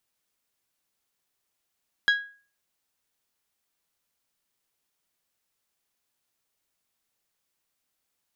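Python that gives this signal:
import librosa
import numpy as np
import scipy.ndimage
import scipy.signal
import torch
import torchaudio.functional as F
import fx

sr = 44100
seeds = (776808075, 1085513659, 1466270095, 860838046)

y = fx.strike_glass(sr, length_s=0.89, level_db=-15, body='bell', hz=1650.0, decay_s=0.4, tilt_db=7.0, modes=5)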